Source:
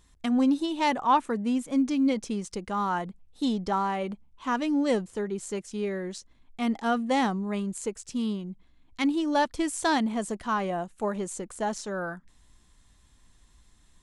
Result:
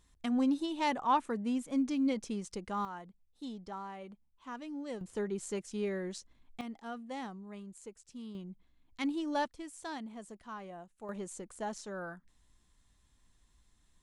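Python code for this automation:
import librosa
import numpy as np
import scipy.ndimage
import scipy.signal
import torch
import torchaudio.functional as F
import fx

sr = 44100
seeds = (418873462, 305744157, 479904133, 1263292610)

y = fx.gain(x, sr, db=fx.steps((0.0, -6.5), (2.85, -16.0), (5.01, -4.5), (6.61, -16.5), (8.35, -8.5), (9.48, -17.0), (11.09, -9.0)))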